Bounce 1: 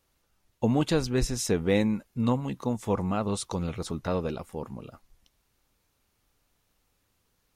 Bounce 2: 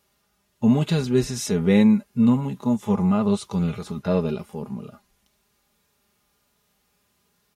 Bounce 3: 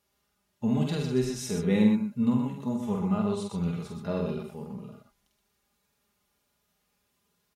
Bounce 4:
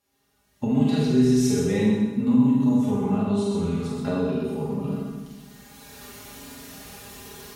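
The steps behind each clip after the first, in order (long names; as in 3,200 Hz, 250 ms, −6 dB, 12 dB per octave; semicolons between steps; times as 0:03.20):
high-pass filter 75 Hz 12 dB per octave; comb filter 4.9 ms, depth 49%; harmonic and percussive parts rebalanced percussive −14 dB; level +8 dB
multi-tap delay 47/124 ms −4.5/−6 dB; level −8.5 dB
camcorder AGC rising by 16 dB per second; convolution reverb RT60 1.2 s, pre-delay 4 ms, DRR −2.5 dB; level −2 dB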